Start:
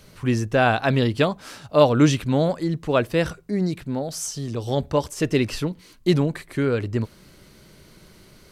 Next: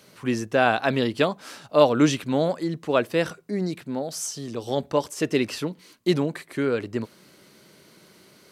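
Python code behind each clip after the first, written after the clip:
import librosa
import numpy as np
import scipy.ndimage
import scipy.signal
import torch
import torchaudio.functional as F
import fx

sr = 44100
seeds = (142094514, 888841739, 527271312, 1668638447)

y = scipy.signal.sosfilt(scipy.signal.butter(2, 200.0, 'highpass', fs=sr, output='sos'), x)
y = F.gain(torch.from_numpy(y), -1.0).numpy()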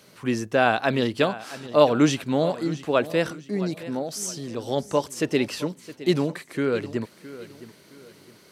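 y = fx.echo_feedback(x, sr, ms=665, feedback_pct=35, wet_db=-16.0)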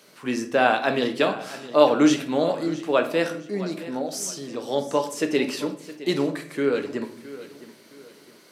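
y = scipy.signal.sosfilt(scipy.signal.butter(2, 230.0, 'highpass', fs=sr, output='sos'), x)
y = fx.room_shoebox(y, sr, seeds[0], volume_m3=72.0, walls='mixed', distance_m=0.38)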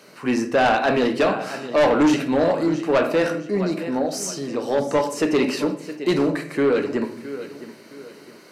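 y = fx.high_shelf(x, sr, hz=4900.0, db=-8.0)
y = fx.notch(y, sr, hz=3400.0, q=6.4)
y = 10.0 ** (-19.5 / 20.0) * np.tanh(y / 10.0 ** (-19.5 / 20.0))
y = F.gain(torch.from_numpy(y), 7.0).numpy()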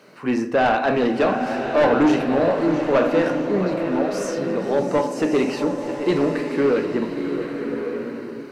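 y = fx.high_shelf(x, sr, hz=4200.0, db=-11.0)
y = fx.quant_dither(y, sr, seeds[1], bits=12, dither='none')
y = fx.rev_bloom(y, sr, seeds[2], attack_ms=1180, drr_db=5.5)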